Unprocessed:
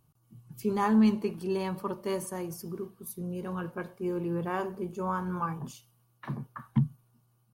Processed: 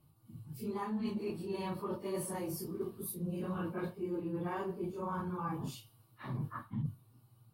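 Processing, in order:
random phases in long frames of 100 ms
camcorder AGC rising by 5.3 dB per second
thirty-one-band graphic EQ 100 Hz +8 dB, 315 Hz +5 dB, 1,600 Hz −3 dB, 4,000 Hz +5 dB, 6,300 Hz −9 dB
reversed playback
downward compressor 6 to 1, threshold −35 dBFS, peak gain reduction 16 dB
reversed playback

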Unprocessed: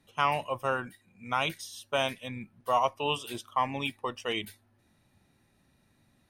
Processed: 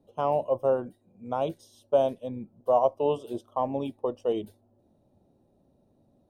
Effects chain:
drawn EQ curve 130 Hz 0 dB, 590 Hz +10 dB, 2,100 Hz −25 dB, 3,000 Hz −14 dB

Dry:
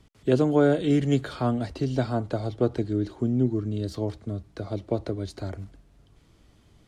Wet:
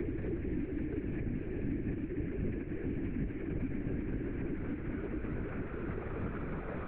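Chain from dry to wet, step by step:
adaptive Wiener filter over 15 samples
treble cut that deepens with the level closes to 1,100 Hz, closed at −21 dBFS
brickwall limiter −19.5 dBFS, peak gain reduction 10.5 dB
downward compressor 3 to 1, threshold −37 dBFS, peak gain reduction 10.5 dB
noise in a band 1,400–2,500 Hz −58 dBFS
extreme stretch with random phases 20×, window 0.50 s, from 0:00.92
linear-prediction vocoder at 8 kHz whisper
multiband upward and downward compressor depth 70%

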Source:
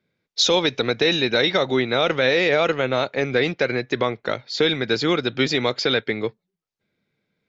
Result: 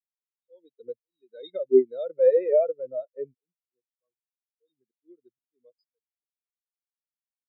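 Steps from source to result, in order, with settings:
volume swells 537 ms
every bin expanded away from the loudest bin 4 to 1

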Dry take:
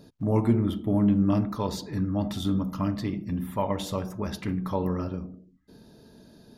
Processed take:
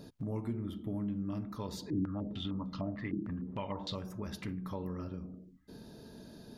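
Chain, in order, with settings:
dynamic equaliser 750 Hz, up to −4 dB, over −44 dBFS, Q 1.3
downward compressor 2.5 to 1, threshold −43 dBFS, peak gain reduction 16.5 dB
0:01.90–0:03.95: low-pass on a step sequencer 6.6 Hz 320–4,100 Hz
level +1 dB

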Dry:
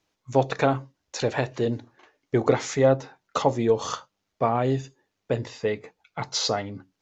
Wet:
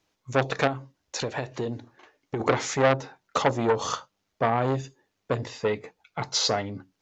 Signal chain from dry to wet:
0:00.67–0:02.40: downward compressor 6 to 1, threshold −27 dBFS, peak gain reduction 10 dB
saturating transformer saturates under 1,500 Hz
level +1.5 dB

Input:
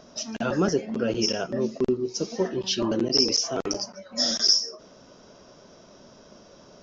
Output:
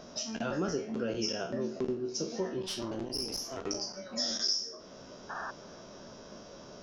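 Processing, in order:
peak hold with a decay on every bin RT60 0.36 s
downward compressor 2 to 1, threshold −38 dBFS, peak gain reduction 13 dB
0:02.66–0:03.65: tube saturation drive 28 dB, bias 0.75
0:05.29–0:05.51: sound drawn into the spectrogram noise 630–1,800 Hz −39 dBFS
on a send: delay with a low-pass on its return 315 ms, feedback 78%, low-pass 2,500 Hz, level −22 dB

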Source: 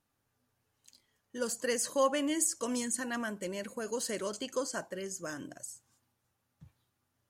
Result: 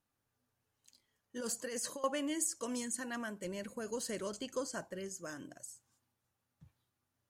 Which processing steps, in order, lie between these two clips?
0:01.36–0:02.04: compressor whose output falls as the input rises −35 dBFS, ratio −1
0:03.44–0:05.09: low-shelf EQ 130 Hz +11.5 dB
level −5 dB

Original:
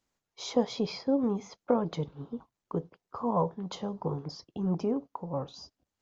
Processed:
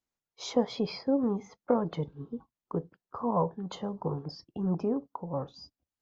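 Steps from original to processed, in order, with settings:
noise reduction from a noise print of the clip's start 10 dB

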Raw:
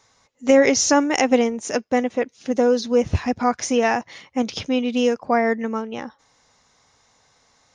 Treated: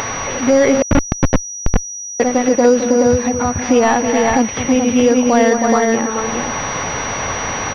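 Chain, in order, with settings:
linear delta modulator 64 kbit/s, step −33 dBFS
0:02.83–0:03.64: downward compressor, threshold −24 dBFS, peak gain reduction 11 dB
tuned comb filter 560 Hz, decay 0.21 s, harmonics all, mix 40%
upward compression, threshold −25 dBFS
on a send: multi-tap delay 214/319/425 ms −12.5/−8/−4.5 dB
0:00.82–0:02.20: on the sum: comparator with hysteresis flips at −12.5 dBFS
boost into a limiter +14.5 dB
switching amplifier with a slow clock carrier 5,800 Hz
level −2.5 dB

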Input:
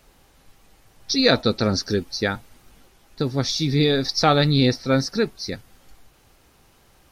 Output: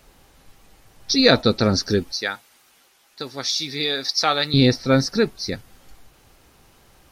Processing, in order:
0:02.12–0:04.54: high-pass filter 1,300 Hz 6 dB per octave
level +2.5 dB

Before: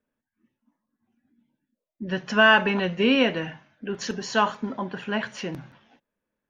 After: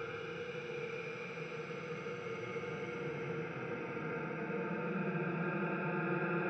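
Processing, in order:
peak hold with a rise ahead of every peak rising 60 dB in 0.39 s
source passing by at 0:02.25, 57 m/s, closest 8.2 metres
steady tone 470 Hz −57 dBFS
extreme stretch with random phases 44×, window 0.05 s, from 0:04.92
level +14.5 dB

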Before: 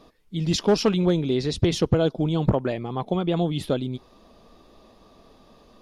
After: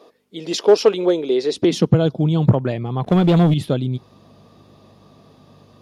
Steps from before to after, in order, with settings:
mains hum 50 Hz, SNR 30 dB
high-pass filter sweep 430 Hz → 120 Hz, 0:01.46–0:02.02
0:03.04–0:03.54: leveller curve on the samples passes 2
level +2 dB

